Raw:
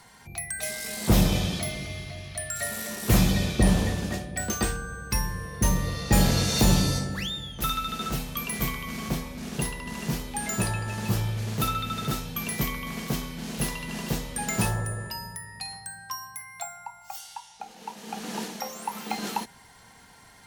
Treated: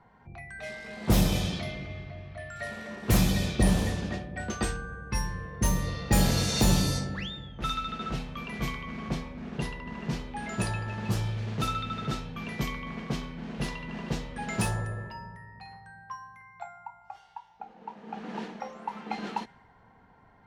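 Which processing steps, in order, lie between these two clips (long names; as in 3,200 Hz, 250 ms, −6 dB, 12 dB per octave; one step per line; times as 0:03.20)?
low-pass that shuts in the quiet parts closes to 1,100 Hz, open at −19 dBFS
level −2.5 dB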